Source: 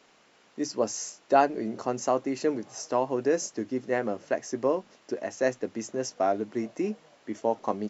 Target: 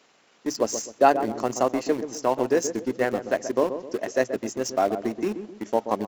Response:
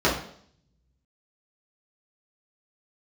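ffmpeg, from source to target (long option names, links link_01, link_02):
-filter_complex "[0:a]highpass=frequency=84:poles=1,highshelf=frequency=2600:gain=2.5,asplit=2[link_01][link_02];[link_02]aeval=exprs='val(0)*gte(abs(val(0)),0.0376)':channel_layout=same,volume=-5.5dB[link_03];[link_01][link_03]amix=inputs=2:normalize=0,atempo=1.3,asplit=2[link_04][link_05];[link_05]adelay=129,lowpass=frequency=880:poles=1,volume=-8.5dB,asplit=2[link_06][link_07];[link_07]adelay=129,lowpass=frequency=880:poles=1,volume=0.42,asplit=2[link_08][link_09];[link_09]adelay=129,lowpass=frequency=880:poles=1,volume=0.42,asplit=2[link_10][link_11];[link_11]adelay=129,lowpass=frequency=880:poles=1,volume=0.42,asplit=2[link_12][link_13];[link_13]adelay=129,lowpass=frequency=880:poles=1,volume=0.42[link_14];[link_04][link_06][link_08][link_10][link_12][link_14]amix=inputs=6:normalize=0"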